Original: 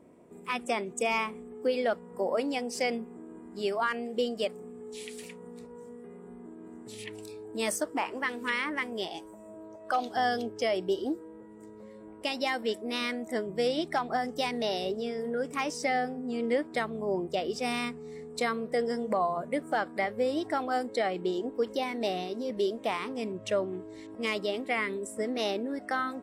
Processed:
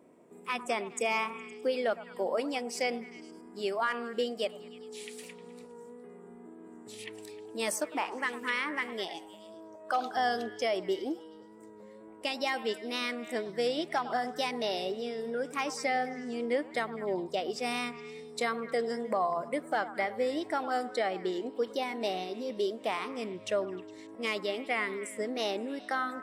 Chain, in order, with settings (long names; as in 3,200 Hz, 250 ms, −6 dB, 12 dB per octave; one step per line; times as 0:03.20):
high-pass filter 240 Hz 6 dB per octave
echo through a band-pass that steps 103 ms, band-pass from 1,000 Hz, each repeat 0.7 octaves, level −11 dB
tape wow and flutter 27 cents
level −1 dB